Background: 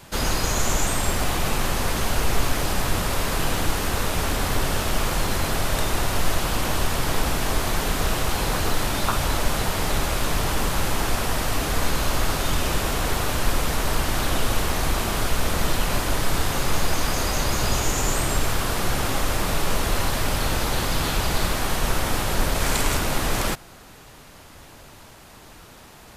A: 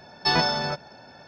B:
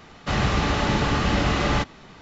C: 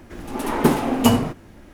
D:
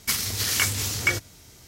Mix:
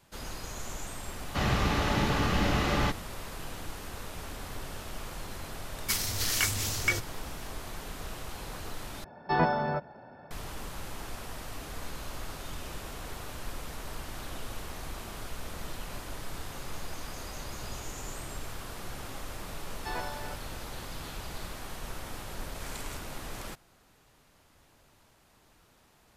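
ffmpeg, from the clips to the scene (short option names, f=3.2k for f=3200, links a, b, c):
-filter_complex "[1:a]asplit=2[a][b];[0:a]volume=-17dB[c];[a]lowpass=1.4k[d];[b]highpass=290,lowpass=2.5k[e];[c]asplit=2[f][g];[f]atrim=end=9.044[h];[d]atrim=end=1.27,asetpts=PTS-STARTPTS,volume=-1dB[i];[g]atrim=start=10.306[j];[2:a]atrim=end=2.21,asetpts=PTS-STARTPTS,volume=-5.5dB,afade=t=in:d=0.004:c=hsin,afade=t=out:st=2.206:d=0.004:c=hsin,adelay=1080[k];[4:a]atrim=end=1.67,asetpts=PTS-STARTPTS,volume=-5dB,afade=t=in:d=0.004:c=hsin,afade=t=out:st=1.666:d=0.004:c=hsin,adelay=256221S[l];[e]atrim=end=1.27,asetpts=PTS-STARTPTS,volume=-13dB,afade=t=in:d=0.004:c=hsin,afade=t=out:st=1.266:d=0.004:c=hsin,adelay=19600[m];[h][i]acrossfade=d=0.004:c1=hsin:c2=hsin[n];[n][j]acrossfade=d=0.004:c1=hsin:c2=hsin[o];[o][k][l][m]amix=inputs=4:normalize=0"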